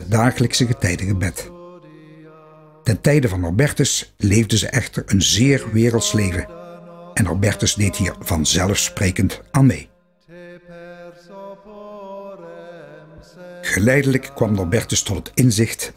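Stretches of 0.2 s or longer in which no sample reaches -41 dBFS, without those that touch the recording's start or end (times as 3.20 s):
9.87–10.30 s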